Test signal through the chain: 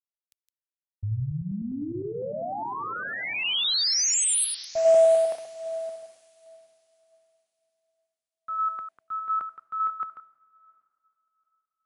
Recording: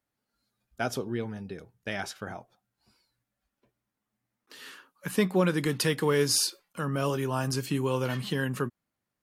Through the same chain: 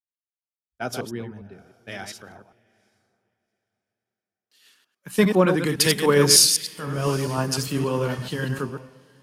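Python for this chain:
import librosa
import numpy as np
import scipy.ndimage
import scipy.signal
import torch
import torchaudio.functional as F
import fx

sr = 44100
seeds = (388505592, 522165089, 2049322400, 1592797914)

y = fx.reverse_delay(x, sr, ms=101, wet_db=-5)
y = fx.echo_diffused(y, sr, ms=809, feedback_pct=47, wet_db=-14.0)
y = fx.band_widen(y, sr, depth_pct=100)
y = y * 10.0 ** (2.0 / 20.0)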